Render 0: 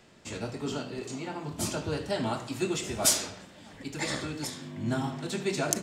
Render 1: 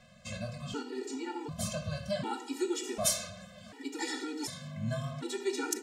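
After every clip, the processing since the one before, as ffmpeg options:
-filter_complex "[0:a]asplit=2[s0][s1];[s1]acompressor=threshold=0.0141:ratio=6,volume=0.891[s2];[s0][s2]amix=inputs=2:normalize=0,afftfilt=real='re*gt(sin(2*PI*0.67*pts/sr)*(1-2*mod(floor(b*sr/1024/250),2)),0)':imag='im*gt(sin(2*PI*0.67*pts/sr)*(1-2*mod(floor(b*sr/1024/250),2)),0)':win_size=1024:overlap=0.75,volume=0.668"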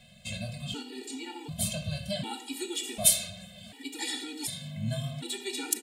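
-af "firequalizer=gain_entry='entry(190,0);entry(390,-10);entry(750,-2);entry(1100,-14);entry(2300,2);entry(3500,7);entry(5700,-6);entry(9000,8)':delay=0.05:min_phase=1,volume=1.41"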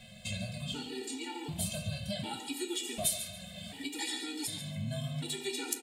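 -af "acompressor=threshold=0.00794:ratio=2,flanger=delay=9.3:depth=3.7:regen=56:speed=0.47:shape=sinusoidal,aecho=1:1:140|280|420:0.251|0.0578|0.0133,volume=2.37"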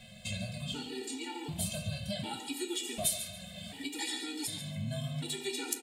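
-af anull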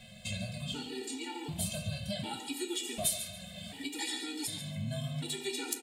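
-af "volume=9.44,asoftclip=hard,volume=0.106"

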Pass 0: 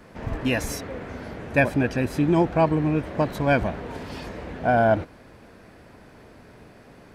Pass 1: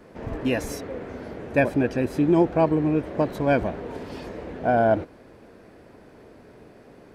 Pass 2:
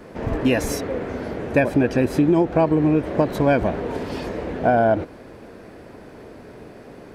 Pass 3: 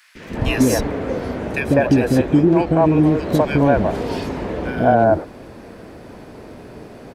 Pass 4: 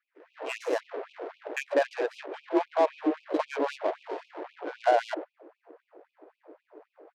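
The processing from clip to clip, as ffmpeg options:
-af "equalizer=f=400:t=o:w=1.6:g=7.5,volume=0.596"
-af "acompressor=threshold=0.0891:ratio=6,volume=2.37"
-filter_complex "[0:a]acrossover=split=450|1700[s0][s1][s2];[s0]adelay=150[s3];[s1]adelay=200[s4];[s3][s4][s2]amix=inputs=3:normalize=0,volume=1.78"
-af "adynamicsmooth=sensitivity=1:basefreq=560,afftfilt=real='re*gte(b*sr/1024,280*pow(2400/280,0.5+0.5*sin(2*PI*3.8*pts/sr)))':imag='im*gte(b*sr/1024,280*pow(2400/280,0.5+0.5*sin(2*PI*3.8*pts/sr)))':win_size=1024:overlap=0.75,volume=0.473"

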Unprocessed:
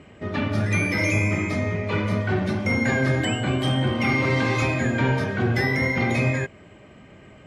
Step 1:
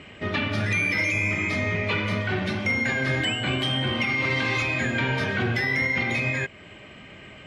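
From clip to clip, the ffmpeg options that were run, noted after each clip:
-af "equalizer=f=2900:w=0.69:g=11,alimiter=limit=0.168:level=0:latency=1:release=394"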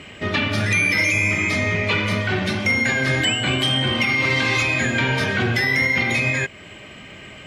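-af "highshelf=f=5600:g=11,volume=1.58"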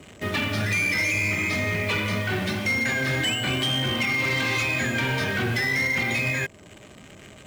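-filter_complex "[0:a]acrossover=split=190|1100|5600[s0][s1][s2][s3];[s2]acrusher=bits=5:mix=0:aa=0.5[s4];[s0][s1][s4][s3]amix=inputs=4:normalize=0,volume=5.96,asoftclip=hard,volume=0.168,volume=0.631"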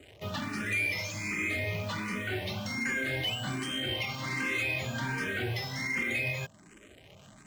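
-filter_complex "[0:a]asplit=2[s0][s1];[s1]afreqshift=1.3[s2];[s0][s2]amix=inputs=2:normalize=1,volume=0.562"

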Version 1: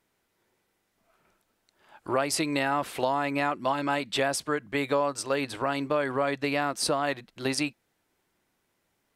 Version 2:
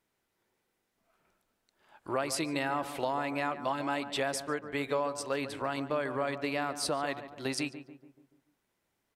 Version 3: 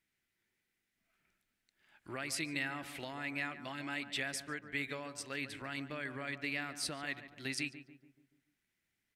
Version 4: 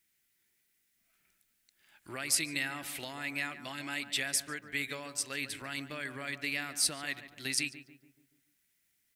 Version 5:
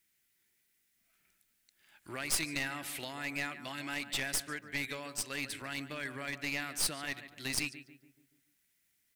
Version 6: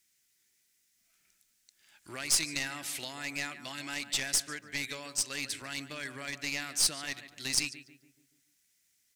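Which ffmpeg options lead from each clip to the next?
-filter_complex "[0:a]asplit=2[s0][s1];[s1]adelay=144,lowpass=f=1500:p=1,volume=0.299,asplit=2[s2][s3];[s3]adelay=144,lowpass=f=1500:p=1,volume=0.53,asplit=2[s4][s5];[s5]adelay=144,lowpass=f=1500:p=1,volume=0.53,asplit=2[s6][s7];[s7]adelay=144,lowpass=f=1500:p=1,volume=0.53,asplit=2[s8][s9];[s9]adelay=144,lowpass=f=1500:p=1,volume=0.53,asplit=2[s10][s11];[s11]adelay=144,lowpass=f=1500:p=1,volume=0.53[s12];[s0][s2][s4][s6][s8][s10][s12]amix=inputs=7:normalize=0,volume=0.531"
-af "equalizer=f=500:t=o:w=1:g=-9,equalizer=f=1000:t=o:w=1:g=-11,equalizer=f=2000:t=o:w=1:g=8,volume=0.596"
-af "crystalizer=i=3:c=0"
-af "aeval=exprs='clip(val(0),-1,0.015)':c=same"
-af "equalizer=f=6200:t=o:w=1.4:g=10.5,volume=0.841"

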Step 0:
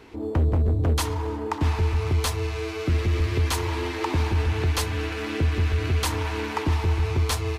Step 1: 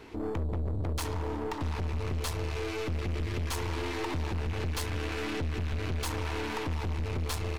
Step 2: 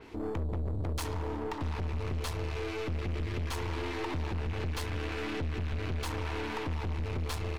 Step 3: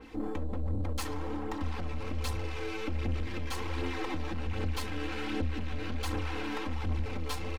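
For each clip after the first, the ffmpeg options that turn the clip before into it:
-af "acompressor=threshold=0.0501:ratio=2.5,aeval=exprs='(tanh(35.5*val(0)+0.55)-tanh(0.55))/35.5':c=same,volume=1.19"
-af "adynamicequalizer=threshold=0.00224:dfrequency=4900:dqfactor=0.7:tfrequency=4900:tqfactor=0.7:attack=5:release=100:ratio=0.375:range=3:mode=cutabove:tftype=highshelf,volume=0.841"
-af "aecho=1:1:3.8:0.83,flanger=delay=0.1:depth=6.8:regen=53:speed=1.3:shape=sinusoidal,volume=1.26"

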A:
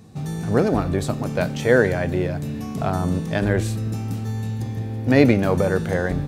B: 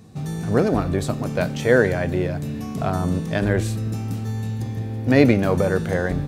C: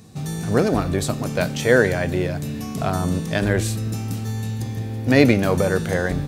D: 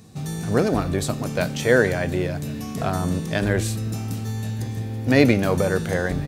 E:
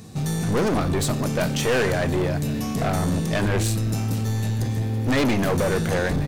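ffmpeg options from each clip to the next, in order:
-af "bandreject=f=840:w=21"
-af "highshelf=f=2600:g=7.5"
-af "aecho=1:1:1094:0.0631,volume=0.841"
-af "aeval=exprs='(tanh(15.8*val(0)+0.2)-tanh(0.2))/15.8':c=same,volume=2"

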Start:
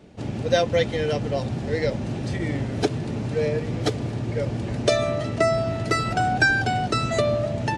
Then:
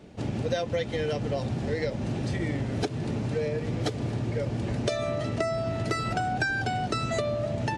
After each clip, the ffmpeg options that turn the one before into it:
-af "acompressor=threshold=0.0562:ratio=6"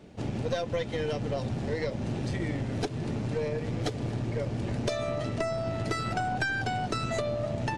-af "aeval=exprs='(tanh(7.94*val(0)+0.45)-tanh(0.45))/7.94':c=same"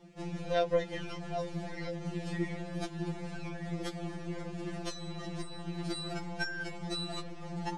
-af "afftfilt=real='re*2.83*eq(mod(b,8),0)':imag='im*2.83*eq(mod(b,8),0)':win_size=2048:overlap=0.75,volume=0.794"

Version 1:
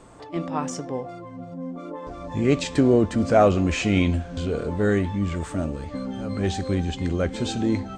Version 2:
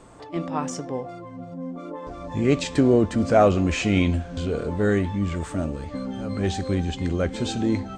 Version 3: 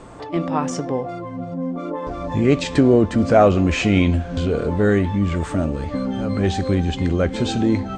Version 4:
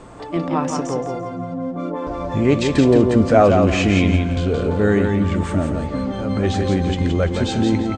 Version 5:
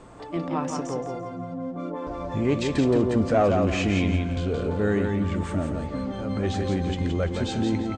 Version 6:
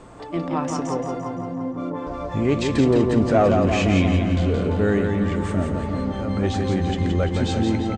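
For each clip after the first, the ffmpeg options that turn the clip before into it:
-af anull
-filter_complex "[0:a]highshelf=f=7200:g=-10,asplit=2[s0][s1];[s1]acompressor=threshold=0.0355:ratio=6,volume=1.06[s2];[s0][s2]amix=inputs=2:normalize=0,volume=1.26"
-af "aecho=1:1:171|342|513|684:0.562|0.169|0.0506|0.0152"
-af "asoftclip=type=tanh:threshold=0.596,volume=0.473"
-filter_complex "[0:a]asplit=2[s0][s1];[s1]adelay=343,lowpass=f=2600:p=1,volume=0.447,asplit=2[s2][s3];[s3]adelay=343,lowpass=f=2600:p=1,volume=0.52,asplit=2[s4][s5];[s5]adelay=343,lowpass=f=2600:p=1,volume=0.52,asplit=2[s6][s7];[s7]adelay=343,lowpass=f=2600:p=1,volume=0.52,asplit=2[s8][s9];[s9]adelay=343,lowpass=f=2600:p=1,volume=0.52,asplit=2[s10][s11];[s11]adelay=343,lowpass=f=2600:p=1,volume=0.52[s12];[s0][s2][s4][s6][s8][s10][s12]amix=inputs=7:normalize=0,volume=1.41"

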